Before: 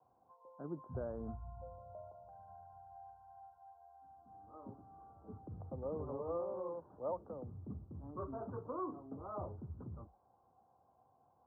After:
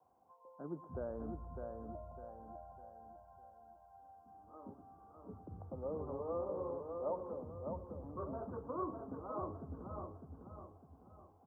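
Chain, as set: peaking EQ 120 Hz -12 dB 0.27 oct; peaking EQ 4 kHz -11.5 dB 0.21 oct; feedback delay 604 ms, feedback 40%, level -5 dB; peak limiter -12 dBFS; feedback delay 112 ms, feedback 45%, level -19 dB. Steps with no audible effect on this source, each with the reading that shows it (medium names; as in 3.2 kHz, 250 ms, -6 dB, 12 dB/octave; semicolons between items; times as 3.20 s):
peaking EQ 4 kHz: input has nothing above 1.4 kHz; peak limiter -12 dBFS: peak at its input -27.5 dBFS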